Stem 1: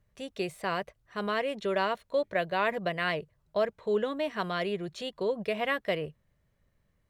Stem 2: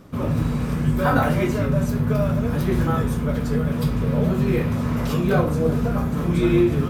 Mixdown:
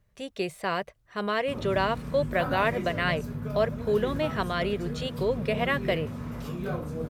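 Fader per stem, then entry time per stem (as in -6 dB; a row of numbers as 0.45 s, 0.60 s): +2.5 dB, -13.0 dB; 0.00 s, 1.35 s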